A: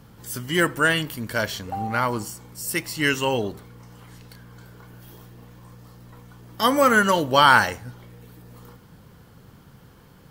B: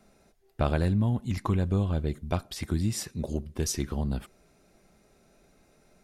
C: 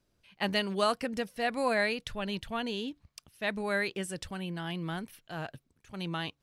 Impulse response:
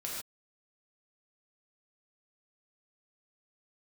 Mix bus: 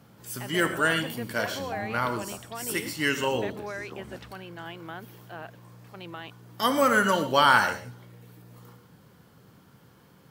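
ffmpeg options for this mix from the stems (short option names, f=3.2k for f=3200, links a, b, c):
-filter_complex "[0:a]highpass=110,volume=-7dB,asplit=2[a][b];[b]volume=-6.5dB[c];[1:a]acompressor=threshold=-29dB:ratio=6,volume=-1dB,asplit=2[d][e];[e]volume=-18.5dB[f];[2:a]volume=0.5dB[g];[d][g]amix=inputs=2:normalize=0,highpass=330,lowpass=2.6k,alimiter=level_in=3dB:limit=-24dB:level=0:latency=1:release=124,volume=-3dB,volume=0dB[h];[3:a]atrim=start_sample=2205[i];[c][f]amix=inputs=2:normalize=0[j];[j][i]afir=irnorm=-1:irlink=0[k];[a][h][k]amix=inputs=3:normalize=0"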